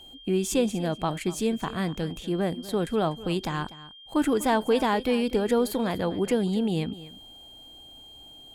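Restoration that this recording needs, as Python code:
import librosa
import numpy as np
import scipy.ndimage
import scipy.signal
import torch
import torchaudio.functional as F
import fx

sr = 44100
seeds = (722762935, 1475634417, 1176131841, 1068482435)

y = fx.notch(x, sr, hz=3200.0, q=30.0)
y = fx.fix_echo_inverse(y, sr, delay_ms=245, level_db=-17.0)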